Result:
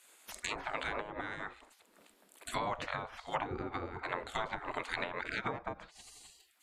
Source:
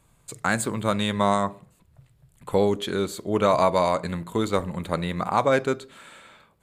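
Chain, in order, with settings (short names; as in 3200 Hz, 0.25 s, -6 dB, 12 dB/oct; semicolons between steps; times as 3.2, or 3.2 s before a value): limiter -11.5 dBFS, peak gain reduction 3.5 dB; spectral gate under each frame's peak -20 dB weak; treble ducked by the level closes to 550 Hz, closed at -34 dBFS; gain +7.5 dB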